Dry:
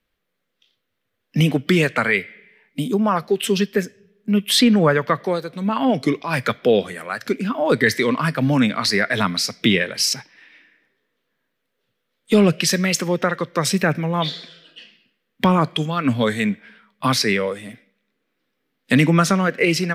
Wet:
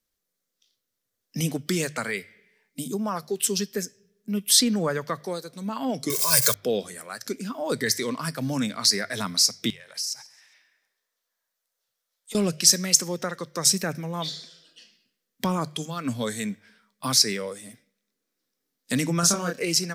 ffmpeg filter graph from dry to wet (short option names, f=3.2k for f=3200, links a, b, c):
-filter_complex "[0:a]asettb=1/sr,asplit=3[a][b][c];[a]atrim=end=6.104[d];[b]atrim=start=6.1:end=6.54,asetpts=PTS-STARTPTS,afade=t=in:d=0.004:c=qsin,afade=t=out:st=0.436:d=0.004:c=qsin,aeval=exprs='val(0)+0.5*0.0299*sgn(val(0))':c=same,aemphasis=mode=production:type=75kf,aecho=1:1:1.9:0.89,atrim=end_sample=19404[e];[c]atrim=start=6.536[f];[d][e]acrossfade=d=0.004:c1=hsin:c2=qsin[g];[g][f]acrossfade=d=0.004:c1=qsin:c2=hsin,asettb=1/sr,asplit=3[h][i][j];[h]atrim=end=9.704[k];[i]atrim=start=9.7:end=12.35,asetpts=PTS-STARTPTS,afade=t=in:d=0.004:c=qsin,afade=t=out:st=2.646:d=0.004:c=qsin,lowshelf=f=490:t=q:w=1.5:g=-12.5,acompressor=threshold=-30dB:ratio=10:attack=3.2:release=140:knee=1:detection=peak,aecho=1:1:135|270|405:0.0841|0.0395|0.0186,atrim=end_sample=116865[l];[j]atrim=start=12.346[m];[k][l]acrossfade=d=0.004:c1=hsin:c2=qsin[n];[n][m]acrossfade=d=0.004:c1=qsin:c2=hsin,asettb=1/sr,asplit=3[o][p][q];[o]atrim=end=19.204[r];[p]atrim=start=19.2:end=19.62,asetpts=PTS-STARTPTS,afade=t=in:d=0.004:c=qsin,afade=t=out:st=0.416:d=0.004:c=qsin,bandreject=f=2k:w=5.7,asplit=2[s][t];[t]adelay=29,volume=-3dB[u];[s][u]amix=inputs=2:normalize=0,atrim=end_sample=18522[v];[q]atrim=start=19.616[w];[r][v]acrossfade=d=0.004:c1=hsin:c2=qsin[x];[x][w]acrossfade=d=0.004:c1=qsin:c2=hsin,highshelf=f=4.1k:t=q:w=1.5:g=13,bandreject=f=50:t=h:w=6,bandreject=f=100:t=h:w=6,bandreject=f=150:t=h:w=6,volume=-9.5dB"